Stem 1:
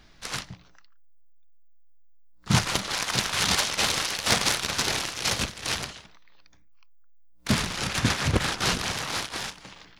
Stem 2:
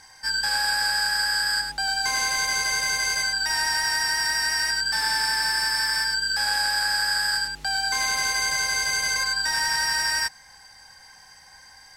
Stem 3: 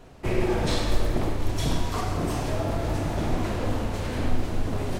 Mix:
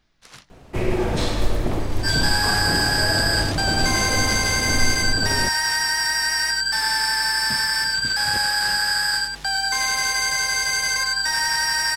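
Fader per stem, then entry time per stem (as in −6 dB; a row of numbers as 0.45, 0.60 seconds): −12.0, +2.5, +2.5 decibels; 0.00, 1.80, 0.50 seconds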